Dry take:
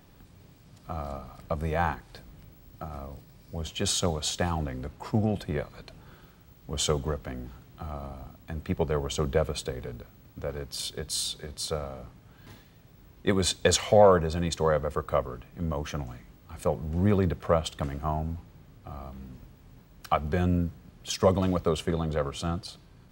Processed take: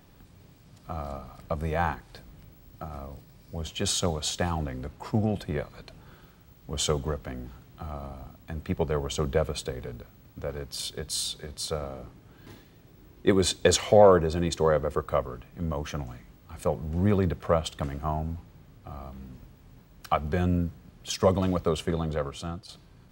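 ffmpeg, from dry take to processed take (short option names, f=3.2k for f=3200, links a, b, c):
-filter_complex "[0:a]asettb=1/sr,asplit=3[a][b][c];[a]atrim=end=11.814[d];[b]atrim=start=11.81:end=15,asetpts=PTS-STARTPTS,afade=t=in:d=0.004:c=qsin,afade=t=out:st=3.186:d=0.004:c=qsin,equalizer=f=340:t=o:w=0.65:g=7[e];[c]atrim=start=14.996[f];[d][e]acrossfade=d=0.004:c1=hsin:c2=qsin[g];[g][f]acrossfade=d=0.004:c1=qsin:c2=hsin,asplit=2[h][i];[h]atrim=end=22.69,asetpts=PTS-STARTPTS,afade=t=out:st=22.05:d=0.64:silence=0.398107[j];[i]atrim=start=22.69,asetpts=PTS-STARTPTS,afade=t=in:d=0.004:c=hsin:silence=0.398107[k];[j][k]concat=n=2:v=0:a=1"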